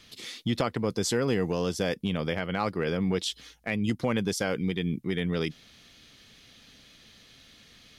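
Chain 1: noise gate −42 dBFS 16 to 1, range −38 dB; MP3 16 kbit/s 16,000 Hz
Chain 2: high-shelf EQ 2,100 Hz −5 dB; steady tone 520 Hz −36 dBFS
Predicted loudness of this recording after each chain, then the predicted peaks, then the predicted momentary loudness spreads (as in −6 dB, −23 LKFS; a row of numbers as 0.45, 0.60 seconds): −30.0, −31.0 LKFS; −14.5, −14.5 dBFS; 5, 12 LU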